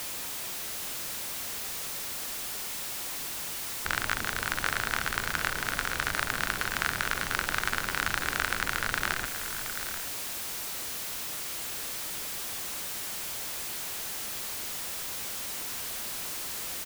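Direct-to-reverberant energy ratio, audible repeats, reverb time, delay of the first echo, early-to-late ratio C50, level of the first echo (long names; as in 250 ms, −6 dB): no reverb audible, 2, no reverb audible, 721 ms, no reverb audible, −13.0 dB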